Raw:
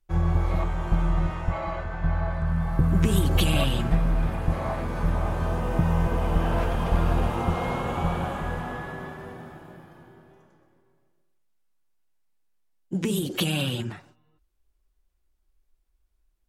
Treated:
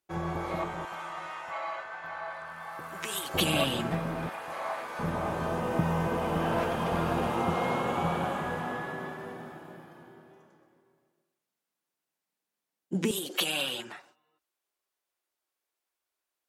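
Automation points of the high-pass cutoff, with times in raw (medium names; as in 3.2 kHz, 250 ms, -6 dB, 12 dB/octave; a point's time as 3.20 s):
240 Hz
from 0.85 s 870 Hz
from 3.34 s 220 Hz
from 4.29 s 750 Hz
from 4.99 s 180 Hz
from 13.11 s 540 Hz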